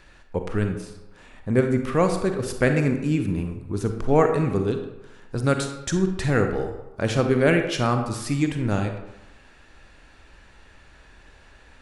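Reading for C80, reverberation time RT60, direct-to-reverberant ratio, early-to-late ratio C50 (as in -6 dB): 9.5 dB, 0.95 s, 5.0 dB, 6.5 dB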